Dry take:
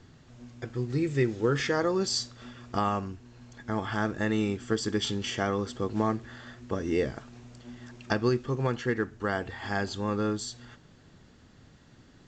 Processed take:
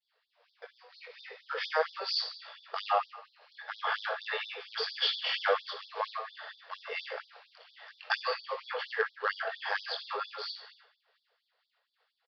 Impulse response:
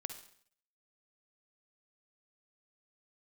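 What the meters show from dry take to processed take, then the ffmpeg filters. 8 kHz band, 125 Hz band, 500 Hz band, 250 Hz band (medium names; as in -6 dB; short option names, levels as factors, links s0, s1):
under -20 dB, under -40 dB, -7.0 dB, under -35 dB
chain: -filter_complex "[0:a]lowshelf=f=110:g=-9,agate=range=0.0224:threshold=0.00316:ratio=3:detection=peak,dynaudnorm=f=380:g=11:m=3.16,asplit=2[s0][s1];[s1]acrusher=samples=11:mix=1:aa=0.000001:lfo=1:lforange=17.6:lforate=3.3,volume=0.282[s2];[s0][s2]amix=inputs=2:normalize=0,flanger=delay=17.5:depth=4.8:speed=0.45,aresample=11025,volume=2.99,asoftclip=hard,volume=0.335,aresample=44100[s3];[1:a]atrim=start_sample=2205[s4];[s3][s4]afir=irnorm=-1:irlink=0,afftfilt=real='re*gte(b*sr/1024,400*pow(3400/400,0.5+0.5*sin(2*PI*4.3*pts/sr)))':imag='im*gte(b*sr/1024,400*pow(3400/400,0.5+0.5*sin(2*PI*4.3*pts/sr)))':win_size=1024:overlap=0.75"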